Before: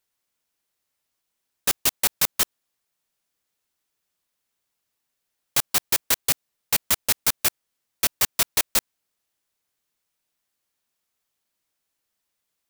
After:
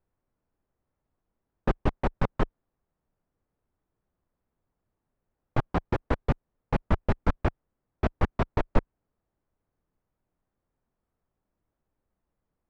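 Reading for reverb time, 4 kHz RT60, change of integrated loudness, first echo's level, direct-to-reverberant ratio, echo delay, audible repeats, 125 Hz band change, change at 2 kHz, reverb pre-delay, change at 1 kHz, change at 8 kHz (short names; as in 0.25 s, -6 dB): none, none, -8.5 dB, none, none, none, none, +13.5 dB, -8.0 dB, none, +1.0 dB, under -35 dB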